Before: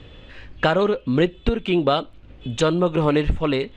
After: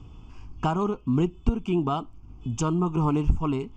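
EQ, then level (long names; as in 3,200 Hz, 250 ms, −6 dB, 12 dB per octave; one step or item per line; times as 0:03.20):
flat-topped bell 2,300 Hz −12.5 dB
phaser with its sweep stopped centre 2,700 Hz, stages 8
0.0 dB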